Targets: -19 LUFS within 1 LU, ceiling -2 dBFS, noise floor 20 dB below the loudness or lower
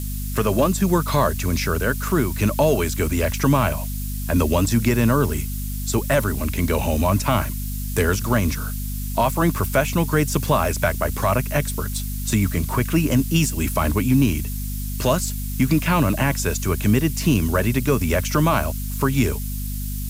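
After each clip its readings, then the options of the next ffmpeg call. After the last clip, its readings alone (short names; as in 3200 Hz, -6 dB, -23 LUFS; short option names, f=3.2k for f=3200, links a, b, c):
hum 50 Hz; harmonics up to 250 Hz; hum level -25 dBFS; noise floor -27 dBFS; noise floor target -41 dBFS; loudness -21.0 LUFS; peak -6.0 dBFS; loudness target -19.0 LUFS
-> -af "bandreject=f=50:t=h:w=4,bandreject=f=100:t=h:w=4,bandreject=f=150:t=h:w=4,bandreject=f=200:t=h:w=4,bandreject=f=250:t=h:w=4"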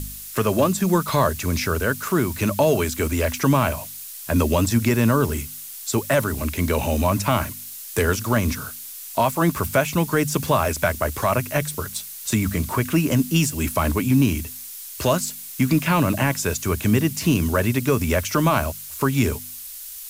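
hum none; noise floor -37 dBFS; noise floor target -42 dBFS
-> -af "afftdn=nr=6:nf=-37"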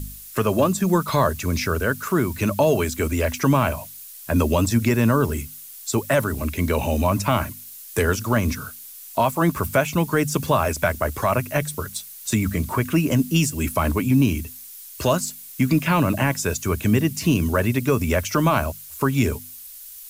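noise floor -40 dBFS; noise floor target -42 dBFS
-> -af "afftdn=nr=6:nf=-40"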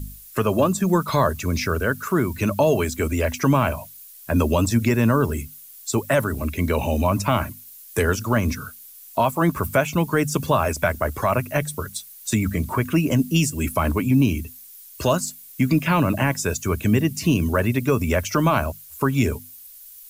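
noise floor -44 dBFS; loudness -22.0 LUFS; peak -7.0 dBFS; loudness target -19.0 LUFS
-> -af "volume=3dB"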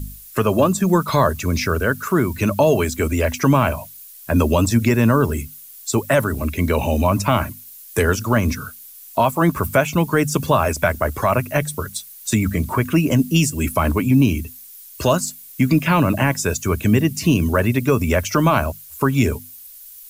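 loudness -19.0 LUFS; peak -4.0 dBFS; noise floor -41 dBFS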